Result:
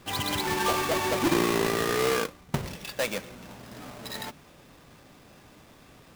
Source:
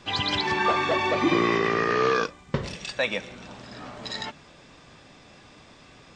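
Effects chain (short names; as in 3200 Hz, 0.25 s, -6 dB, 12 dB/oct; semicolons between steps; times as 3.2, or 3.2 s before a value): half-waves squared off; gain -7 dB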